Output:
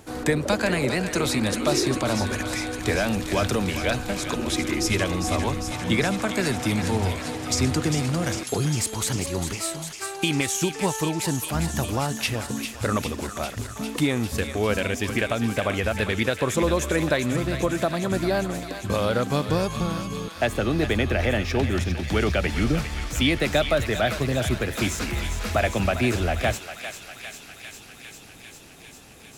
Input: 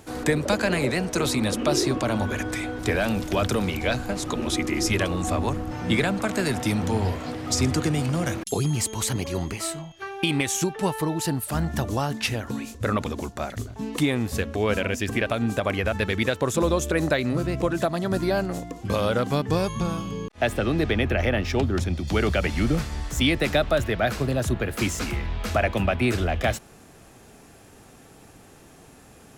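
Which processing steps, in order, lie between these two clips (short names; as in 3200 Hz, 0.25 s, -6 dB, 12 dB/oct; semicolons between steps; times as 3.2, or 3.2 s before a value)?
thinning echo 0.401 s, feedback 84%, high-pass 1200 Hz, level -7.5 dB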